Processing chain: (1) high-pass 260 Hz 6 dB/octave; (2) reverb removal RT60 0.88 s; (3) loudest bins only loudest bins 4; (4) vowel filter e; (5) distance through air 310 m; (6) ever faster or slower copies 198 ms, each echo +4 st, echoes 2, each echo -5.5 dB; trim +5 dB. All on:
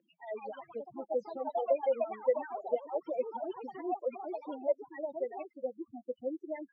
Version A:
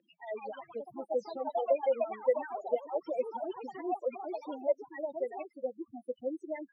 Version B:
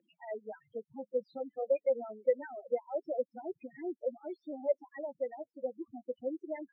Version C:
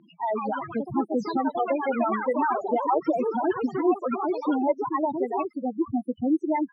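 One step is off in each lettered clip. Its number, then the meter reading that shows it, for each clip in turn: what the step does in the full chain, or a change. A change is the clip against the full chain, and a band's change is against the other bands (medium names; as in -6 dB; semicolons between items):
5, 2 kHz band +2.0 dB; 6, 1 kHz band -7.0 dB; 4, 500 Hz band -10.0 dB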